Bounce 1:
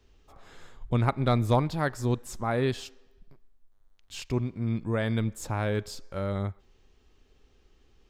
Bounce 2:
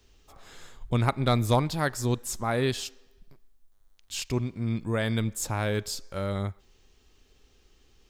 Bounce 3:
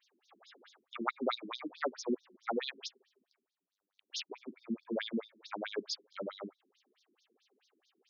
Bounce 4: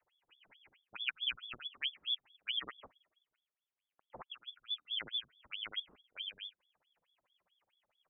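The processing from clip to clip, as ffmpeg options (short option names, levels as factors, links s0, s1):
-af "highshelf=f=3400:g=10.5"
-af "afftfilt=real='re*between(b*sr/1024,260*pow(4900/260,0.5+0.5*sin(2*PI*4.6*pts/sr))/1.41,260*pow(4900/260,0.5+0.5*sin(2*PI*4.6*pts/sr))*1.41)':imag='im*between(b*sr/1024,260*pow(4900/260,0.5+0.5*sin(2*PI*4.6*pts/sr))/1.41,260*pow(4900/260,0.5+0.5*sin(2*PI*4.6*pts/sr))*1.41)':win_size=1024:overlap=0.75,volume=0.891"
-af "lowpass=f=3100:t=q:w=0.5098,lowpass=f=3100:t=q:w=0.6013,lowpass=f=3100:t=q:w=0.9,lowpass=f=3100:t=q:w=2.563,afreqshift=-3700,volume=0.708"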